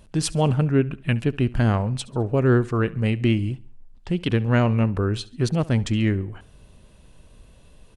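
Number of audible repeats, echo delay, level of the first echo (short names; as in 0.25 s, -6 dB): 2, 69 ms, -21.0 dB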